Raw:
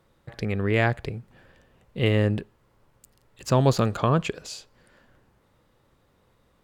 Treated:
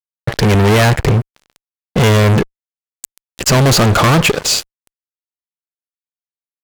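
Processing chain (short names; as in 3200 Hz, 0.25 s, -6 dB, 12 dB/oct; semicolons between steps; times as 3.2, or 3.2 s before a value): fuzz box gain 37 dB, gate -46 dBFS; gain +4.5 dB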